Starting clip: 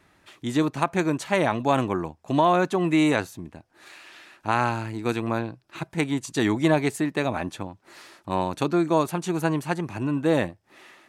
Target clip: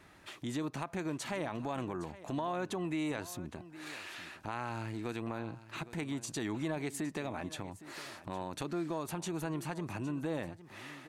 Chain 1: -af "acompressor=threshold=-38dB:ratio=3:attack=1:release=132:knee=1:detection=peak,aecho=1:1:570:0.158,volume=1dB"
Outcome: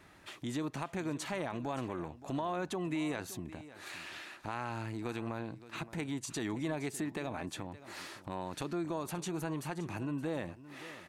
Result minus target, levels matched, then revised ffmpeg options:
echo 242 ms early
-af "acompressor=threshold=-38dB:ratio=3:attack=1:release=132:knee=1:detection=peak,aecho=1:1:812:0.158,volume=1dB"

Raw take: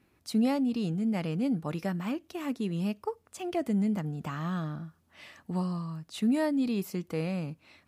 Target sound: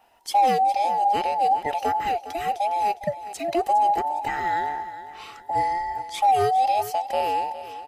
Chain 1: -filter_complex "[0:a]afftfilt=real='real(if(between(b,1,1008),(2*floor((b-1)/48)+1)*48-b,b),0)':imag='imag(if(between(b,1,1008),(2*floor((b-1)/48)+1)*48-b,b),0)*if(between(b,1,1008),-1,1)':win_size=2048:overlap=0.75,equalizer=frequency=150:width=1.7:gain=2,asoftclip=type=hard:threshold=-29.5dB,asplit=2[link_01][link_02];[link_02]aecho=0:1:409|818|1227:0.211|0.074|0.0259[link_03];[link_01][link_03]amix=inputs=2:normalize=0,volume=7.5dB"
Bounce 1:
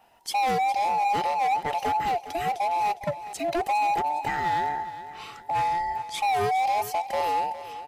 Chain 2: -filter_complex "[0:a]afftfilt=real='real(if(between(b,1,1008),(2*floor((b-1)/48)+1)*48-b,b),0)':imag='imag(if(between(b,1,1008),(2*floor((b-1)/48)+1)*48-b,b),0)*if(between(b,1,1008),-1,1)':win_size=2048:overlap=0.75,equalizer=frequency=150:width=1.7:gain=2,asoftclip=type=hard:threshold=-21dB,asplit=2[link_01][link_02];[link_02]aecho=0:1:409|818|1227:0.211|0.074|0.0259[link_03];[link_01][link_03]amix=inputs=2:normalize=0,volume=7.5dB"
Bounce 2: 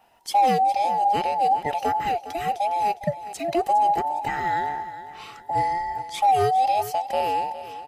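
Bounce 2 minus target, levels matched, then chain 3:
125 Hz band +4.5 dB
-filter_complex "[0:a]afftfilt=real='real(if(between(b,1,1008),(2*floor((b-1)/48)+1)*48-b,b),0)':imag='imag(if(between(b,1,1008),(2*floor((b-1)/48)+1)*48-b,b),0)*if(between(b,1,1008),-1,1)':win_size=2048:overlap=0.75,equalizer=frequency=150:width=1.7:gain=-6,asoftclip=type=hard:threshold=-21dB,asplit=2[link_01][link_02];[link_02]aecho=0:1:409|818|1227:0.211|0.074|0.0259[link_03];[link_01][link_03]amix=inputs=2:normalize=0,volume=7.5dB"

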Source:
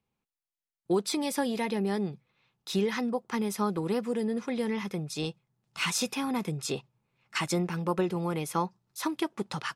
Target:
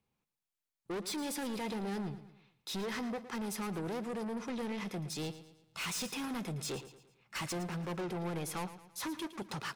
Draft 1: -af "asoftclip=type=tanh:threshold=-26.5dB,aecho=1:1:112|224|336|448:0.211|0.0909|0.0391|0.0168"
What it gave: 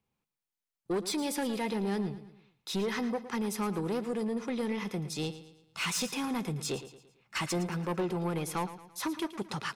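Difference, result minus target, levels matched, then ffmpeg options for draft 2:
soft clipping: distortion −7 dB
-af "asoftclip=type=tanh:threshold=-35.5dB,aecho=1:1:112|224|336|448:0.211|0.0909|0.0391|0.0168"

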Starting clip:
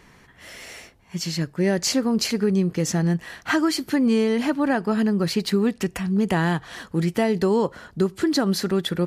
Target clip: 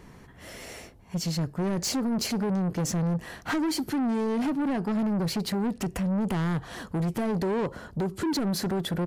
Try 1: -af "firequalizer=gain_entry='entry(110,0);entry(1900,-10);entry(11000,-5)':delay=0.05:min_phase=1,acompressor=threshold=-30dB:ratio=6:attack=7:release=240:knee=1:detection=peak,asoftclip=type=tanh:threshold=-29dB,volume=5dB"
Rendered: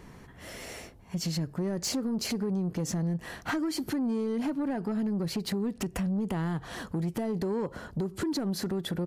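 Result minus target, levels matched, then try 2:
downward compressor: peak gain reduction +8.5 dB
-af "firequalizer=gain_entry='entry(110,0);entry(1900,-10);entry(11000,-5)':delay=0.05:min_phase=1,acompressor=threshold=-20dB:ratio=6:attack=7:release=240:knee=1:detection=peak,asoftclip=type=tanh:threshold=-29dB,volume=5dB"

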